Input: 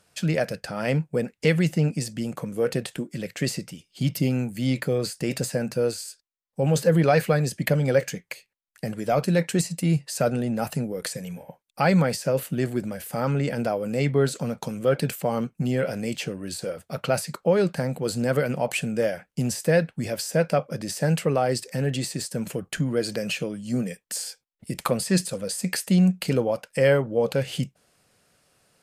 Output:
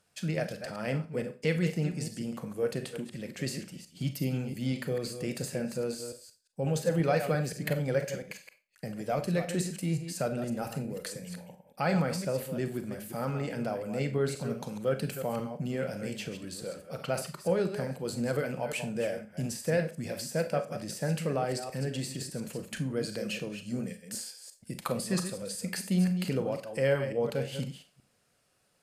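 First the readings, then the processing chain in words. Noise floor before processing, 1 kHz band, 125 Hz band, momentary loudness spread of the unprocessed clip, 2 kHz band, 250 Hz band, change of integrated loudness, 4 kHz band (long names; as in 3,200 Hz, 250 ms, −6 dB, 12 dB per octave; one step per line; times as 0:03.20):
−76 dBFS, −7.5 dB, −8.0 dB, 11 LU, −7.5 dB, −7.5 dB, −7.5 dB, −7.5 dB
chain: delay that plays each chunk backwards 175 ms, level −9 dB
four-comb reverb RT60 0.3 s, combs from 30 ms, DRR 9 dB
level −8.5 dB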